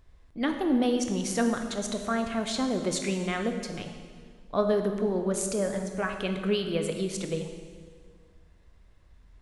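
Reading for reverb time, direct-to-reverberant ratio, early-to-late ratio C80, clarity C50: 1.8 s, 5.0 dB, 7.5 dB, 6.5 dB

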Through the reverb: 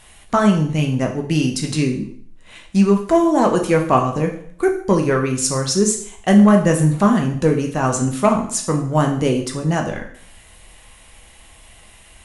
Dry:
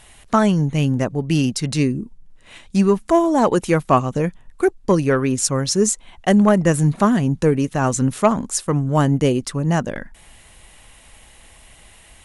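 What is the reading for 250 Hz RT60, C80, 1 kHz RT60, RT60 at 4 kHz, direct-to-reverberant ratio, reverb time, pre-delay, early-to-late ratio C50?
0.60 s, 12.0 dB, 0.60 s, 0.55 s, 2.0 dB, 0.60 s, 4 ms, 8.5 dB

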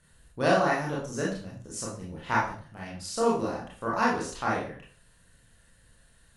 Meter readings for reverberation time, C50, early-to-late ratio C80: 0.45 s, 3.5 dB, 8.5 dB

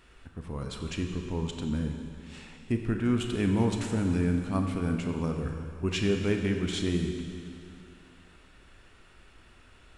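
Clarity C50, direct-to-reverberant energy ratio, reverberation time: 4.5 dB, 3.5 dB, 2.5 s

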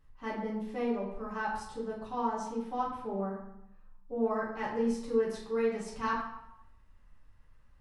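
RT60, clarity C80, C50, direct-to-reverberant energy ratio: 0.80 s, 6.5 dB, 3.5 dB, -7.0 dB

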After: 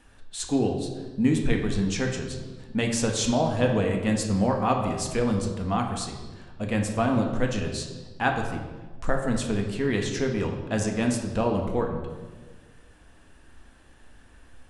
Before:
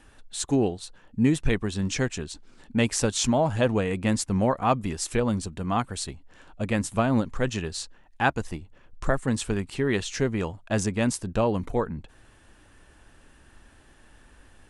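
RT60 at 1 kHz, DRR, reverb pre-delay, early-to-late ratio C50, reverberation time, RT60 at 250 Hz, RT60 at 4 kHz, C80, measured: 1.2 s, 2.0 dB, 4 ms, 5.5 dB, 1.4 s, 1.7 s, 1.0 s, 7.5 dB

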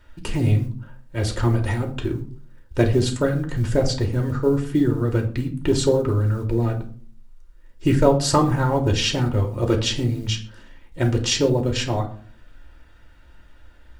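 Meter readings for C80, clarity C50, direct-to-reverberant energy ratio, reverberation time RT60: 16.5 dB, 12.0 dB, 2.0 dB, 0.45 s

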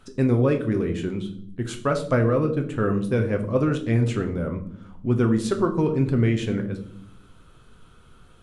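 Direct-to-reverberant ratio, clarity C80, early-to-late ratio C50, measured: 4.0 dB, 15.0 dB, 11.5 dB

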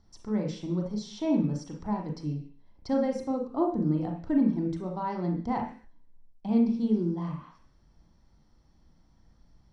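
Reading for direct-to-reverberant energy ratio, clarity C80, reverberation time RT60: 1.5 dB, 11.5 dB, 0.45 s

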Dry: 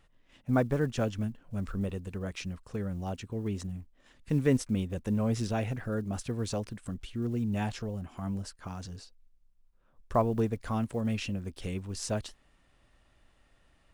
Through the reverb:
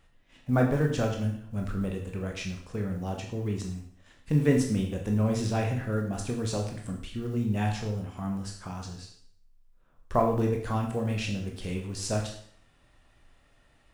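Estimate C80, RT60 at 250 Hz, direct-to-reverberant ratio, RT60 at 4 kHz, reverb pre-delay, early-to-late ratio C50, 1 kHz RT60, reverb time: 9.5 dB, 0.55 s, 1.0 dB, 0.60 s, 17 ms, 6.5 dB, 0.60 s, 0.60 s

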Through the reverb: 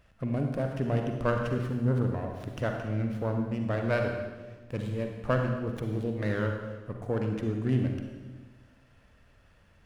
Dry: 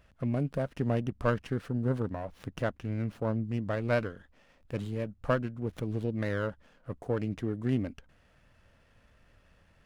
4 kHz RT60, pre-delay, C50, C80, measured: 1.2 s, 39 ms, 3.5 dB, 5.5 dB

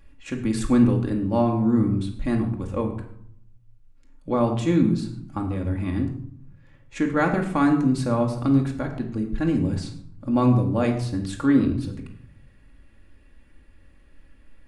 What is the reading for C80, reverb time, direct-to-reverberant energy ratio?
11.0 dB, 0.65 s, 1.5 dB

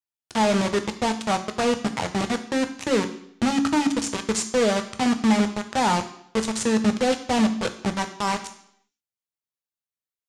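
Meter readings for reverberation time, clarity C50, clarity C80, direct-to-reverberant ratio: 0.70 s, 12.5 dB, 15.0 dB, 7.0 dB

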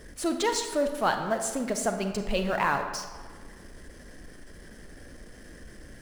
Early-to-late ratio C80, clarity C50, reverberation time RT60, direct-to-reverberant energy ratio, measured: 8.5 dB, 7.0 dB, 1.5 s, 6.0 dB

